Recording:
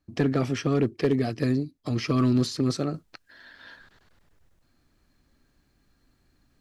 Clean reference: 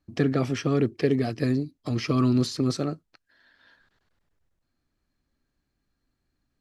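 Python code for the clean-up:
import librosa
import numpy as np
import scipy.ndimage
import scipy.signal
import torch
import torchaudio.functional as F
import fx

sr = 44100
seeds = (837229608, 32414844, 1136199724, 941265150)

y = fx.fix_declip(x, sr, threshold_db=-15.0)
y = fx.gain(y, sr, db=fx.steps((0.0, 0.0), (2.94, -11.0)))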